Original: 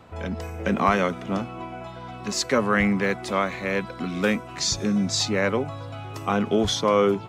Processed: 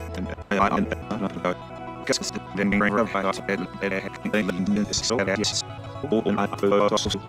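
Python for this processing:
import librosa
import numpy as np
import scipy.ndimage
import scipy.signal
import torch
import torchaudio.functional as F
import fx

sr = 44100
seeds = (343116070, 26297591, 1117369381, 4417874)

y = fx.block_reorder(x, sr, ms=85.0, group=6)
y = fx.hum_notches(y, sr, base_hz=50, count=2)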